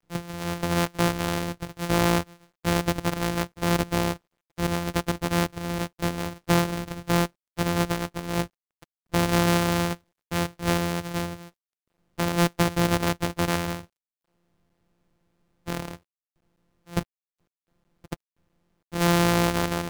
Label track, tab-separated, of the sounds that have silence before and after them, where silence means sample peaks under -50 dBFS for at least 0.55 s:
12.180000	13.860000	sound
15.660000	15.970000	sound
16.870000	17.030000	sound
18.040000	18.150000	sound